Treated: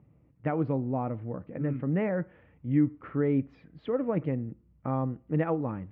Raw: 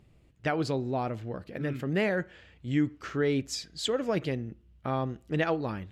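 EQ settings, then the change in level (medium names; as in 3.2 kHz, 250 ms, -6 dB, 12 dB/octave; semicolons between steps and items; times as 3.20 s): cabinet simulation 190–2100 Hz, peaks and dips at 210 Hz -5 dB, 380 Hz -10 dB, 670 Hz -5 dB, 1.6 kHz -7 dB; tilt EQ -3.5 dB/octave; 0.0 dB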